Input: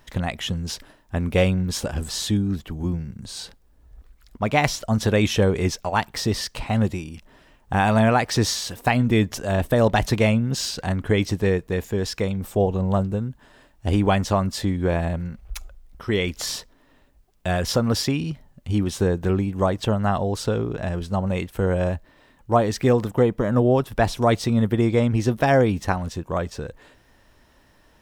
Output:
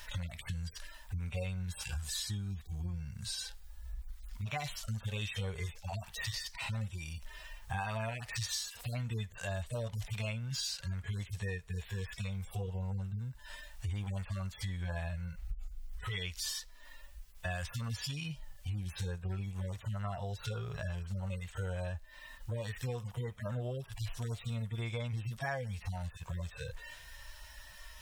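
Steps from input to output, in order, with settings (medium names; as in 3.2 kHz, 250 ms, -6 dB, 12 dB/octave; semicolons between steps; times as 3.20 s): harmonic-percussive separation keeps harmonic; amplifier tone stack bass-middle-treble 10-0-10; compression 4:1, threshold -53 dBFS, peak gain reduction 21 dB; trim +14.5 dB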